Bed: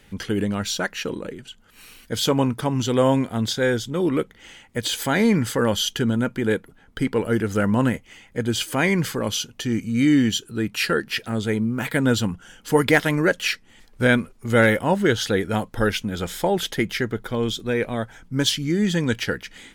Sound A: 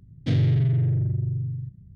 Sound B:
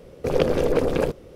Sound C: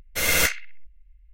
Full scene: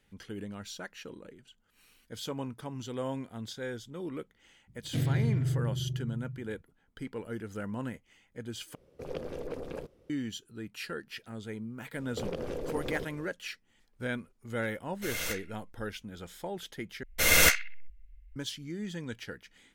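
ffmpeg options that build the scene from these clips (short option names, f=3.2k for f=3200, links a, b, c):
-filter_complex "[2:a]asplit=2[a][b];[3:a]asplit=2[c][d];[0:a]volume=-17dB[e];[1:a]bandreject=f=50:t=h:w=6,bandreject=f=100:t=h:w=6[f];[b]acompressor=threshold=-26dB:ratio=6:attack=3.2:release=140:knee=1:detection=peak[g];[e]asplit=3[h][i][j];[h]atrim=end=8.754[k];[a]atrim=end=1.35,asetpts=PTS-STARTPTS,volume=-18dB[l];[i]atrim=start=10.096:end=17.034[m];[d]atrim=end=1.33,asetpts=PTS-STARTPTS,volume=-0.5dB[n];[j]atrim=start=18.356[o];[f]atrim=end=1.95,asetpts=PTS-STARTPTS,volume=-7dB,afade=t=in:d=0.004:c=hsin,afade=t=out:st=1.946:d=0.004:c=hsin,adelay=4670[p];[g]atrim=end=1.35,asetpts=PTS-STARTPTS,volume=-6dB,afade=t=in:d=0.004:c=hsin,afade=t=out:st=1.346:d=0.004:c=hsin,adelay=11930[q];[c]atrim=end=1.33,asetpts=PTS-STARTPTS,volume=-15dB,afade=t=in:d=0.004:c=hsin,afade=t=out:st=1.326:d=0.004:c=hsin,adelay=14860[r];[k][l]acrossfade=d=0.004:c1=hsin:c2=hsin[s];[s][m]acrossfade=d=0.004:c1=hsin:c2=hsin[t];[t][n]acrossfade=d=0.004:c1=hsin:c2=hsin[u];[u][o]acrossfade=d=0.004:c1=hsin:c2=hsin[v];[v][p][q][r]amix=inputs=4:normalize=0"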